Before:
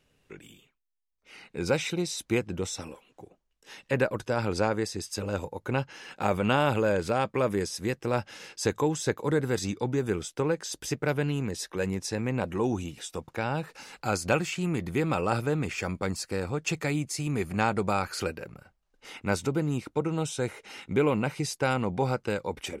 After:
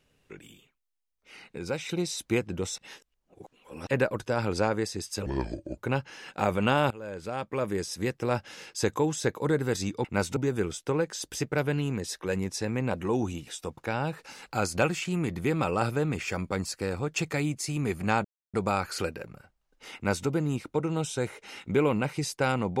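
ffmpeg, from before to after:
ffmpeg -i in.wav -filter_complex "[0:a]asplit=11[link_01][link_02][link_03][link_04][link_05][link_06][link_07][link_08][link_09][link_10][link_11];[link_01]atrim=end=1.582[link_12];[link_02]atrim=start=1.578:end=1.892,asetpts=PTS-STARTPTS,volume=-6dB[link_13];[link_03]atrim=start=1.888:end=2.782[link_14];[link_04]atrim=start=2.778:end=3.872,asetpts=PTS-STARTPTS,areverse[link_15];[link_05]atrim=start=3.868:end=5.264[link_16];[link_06]atrim=start=5.26:end=5.6,asetpts=PTS-STARTPTS,asetrate=29106,aresample=44100,atrim=end_sample=22718,asetpts=PTS-STARTPTS[link_17];[link_07]atrim=start=5.596:end=6.73,asetpts=PTS-STARTPTS,afade=type=out:start_time=1.13:duration=0.004:curve=hsin:silence=0.0841395[link_18];[link_08]atrim=start=6.73:end=9.872,asetpts=PTS-STARTPTS,afade=type=in:duration=1.1:silence=0.0841395[link_19];[link_09]atrim=start=19.168:end=19.492[link_20];[link_10]atrim=start=9.868:end=17.75,asetpts=PTS-STARTPTS,afade=type=out:start_time=7.878:duration=0.004:curve=hsin,apad=pad_dur=0.29[link_21];[link_11]atrim=start=17.75,asetpts=PTS-STARTPTS,afade=type=in:duration=0.004:curve=hsin[link_22];[link_12][link_13]acrossfade=duration=0.004:curve1=hsin:curve2=hsin[link_23];[link_23][link_14]acrossfade=duration=0.004:curve1=hsin:curve2=hsin[link_24];[link_24][link_15]acrossfade=duration=0.004:curve1=hsin:curve2=hsin[link_25];[link_25][link_16]acrossfade=duration=0.004:curve1=hsin:curve2=hsin[link_26];[link_26][link_17]acrossfade=duration=0.004:curve1=hsin:curve2=hsin[link_27];[link_18][link_19]concat=n=2:v=0:a=1[link_28];[link_27][link_28]acrossfade=duration=0.004:curve1=hsin:curve2=hsin[link_29];[link_29][link_20]acrossfade=duration=0.004:curve1=hsin:curve2=hsin[link_30];[link_21][link_22]concat=n=2:v=0:a=1[link_31];[link_30][link_31]acrossfade=duration=0.004:curve1=hsin:curve2=hsin" out.wav

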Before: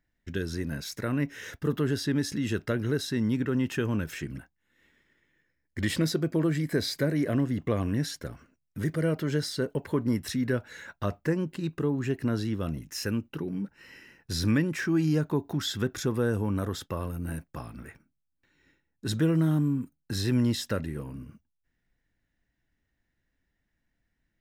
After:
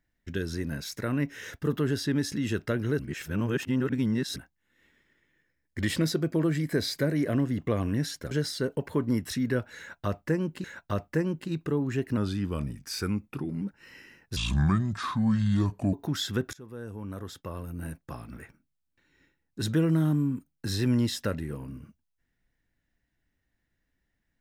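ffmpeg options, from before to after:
ffmpeg -i in.wav -filter_complex "[0:a]asplit=10[link_01][link_02][link_03][link_04][link_05][link_06][link_07][link_08][link_09][link_10];[link_01]atrim=end=2.992[link_11];[link_02]atrim=start=2.988:end=4.362,asetpts=PTS-STARTPTS,areverse[link_12];[link_03]atrim=start=4.358:end=8.312[link_13];[link_04]atrim=start=9.288:end=11.622[link_14];[link_05]atrim=start=10.758:end=12.294[link_15];[link_06]atrim=start=12.29:end=13.59,asetpts=PTS-STARTPTS,asetrate=39690,aresample=44100[link_16];[link_07]atrim=start=13.586:end=14.344[link_17];[link_08]atrim=start=14.34:end=15.39,asetpts=PTS-STARTPTS,asetrate=29547,aresample=44100[link_18];[link_09]atrim=start=15.386:end=15.99,asetpts=PTS-STARTPTS,afade=type=out:start_time=0.6:duration=0.004:curve=hsin:silence=0.0749894[link_19];[link_10]atrim=start=15.99,asetpts=PTS-STARTPTS,afade=type=in:duration=1.81:silence=0.0749894[link_20];[link_11][link_12]acrossfade=duration=0.004:curve1=hsin:curve2=hsin[link_21];[link_21][link_13]acrossfade=duration=0.004:curve1=hsin:curve2=hsin[link_22];[link_22][link_14]acrossfade=duration=0.004:curve1=hsin:curve2=hsin[link_23];[link_23][link_15]acrossfade=duration=0.004:curve1=hsin:curve2=hsin[link_24];[link_24][link_16]acrossfade=duration=0.004:curve1=hsin:curve2=hsin[link_25];[link_25][link_17]acrossfade=duration=0.004:curve1=hsin:curve2=hsin[link_26];[link_26][link_18]acrossfade=duration=0.004:curve1=hsin:curve2=hsin[link_27];[link_19][link_20]concat=n=2:v=0:a=1[link_28];[link_27][link_28]acrossfade=duration=0.004:curve1=hsin:curve2=hsin" out.wav

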